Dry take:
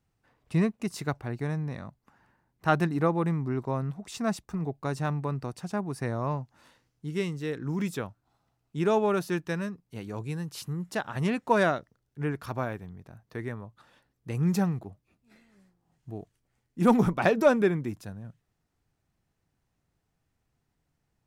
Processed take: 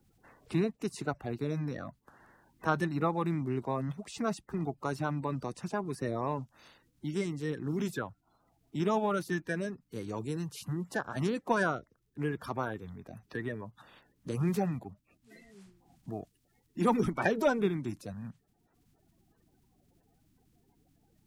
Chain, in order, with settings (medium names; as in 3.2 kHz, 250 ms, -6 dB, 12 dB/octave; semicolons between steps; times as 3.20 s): coarse spectral quantiser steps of 30 dB; three bands compressed up and down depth 40%; trim -3 dB